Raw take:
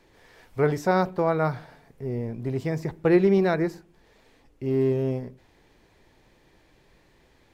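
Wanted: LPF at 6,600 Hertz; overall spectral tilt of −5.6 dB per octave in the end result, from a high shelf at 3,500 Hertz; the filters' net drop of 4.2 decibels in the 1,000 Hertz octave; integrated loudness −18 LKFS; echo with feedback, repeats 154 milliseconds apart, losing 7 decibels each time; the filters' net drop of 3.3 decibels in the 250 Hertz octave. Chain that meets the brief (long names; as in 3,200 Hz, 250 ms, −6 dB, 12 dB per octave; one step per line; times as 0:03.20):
low-pass filter 6,600 Hz
parametric band 250 Hz −5 dB
parametric band 1,000 Hz −5 dB
high-shelf EQ 3,500 Hz −7 dB
repeating echo 154 ms, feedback 45%, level −7 dB
level +9 dB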